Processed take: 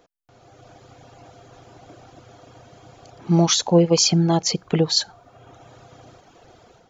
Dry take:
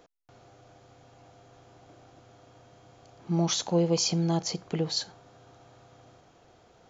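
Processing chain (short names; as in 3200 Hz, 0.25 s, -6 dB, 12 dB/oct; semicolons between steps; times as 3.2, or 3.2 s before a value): reverb removal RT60 0.89 s; AGC gain up to 11 dB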